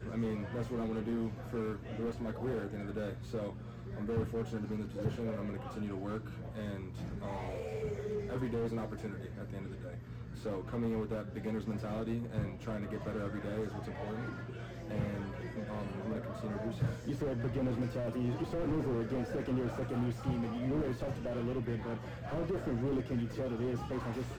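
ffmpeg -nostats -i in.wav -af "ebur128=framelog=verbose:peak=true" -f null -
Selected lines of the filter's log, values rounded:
Integrated loudness:
  I:         -38.0 LUFS
  Threshold: -48.0 LUFS
Loudness range:
  LRA:         4.4 LU
  Threshold: -58.1 LUFS
  LRA low:   -40.0 LUFS
  LRA high:  -35.6 LUFS
True peak:
  Peak:      -20.5 dBFS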